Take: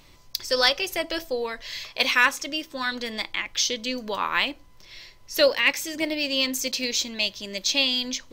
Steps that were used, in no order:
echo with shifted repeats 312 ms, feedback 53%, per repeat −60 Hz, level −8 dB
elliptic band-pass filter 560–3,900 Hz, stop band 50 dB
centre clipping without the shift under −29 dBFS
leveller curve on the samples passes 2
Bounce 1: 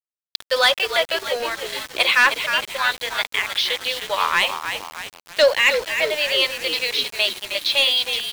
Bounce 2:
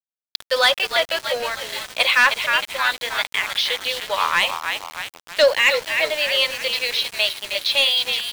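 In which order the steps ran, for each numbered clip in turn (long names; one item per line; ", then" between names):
elliptic band-pass filter, then leveller curve on the samples, then echo with shifted repeats, then centre clipping without the shift
echo with shifted repeats, then elliptic band-pass filter, then leveller curve on the samples, then centre clipping without the shift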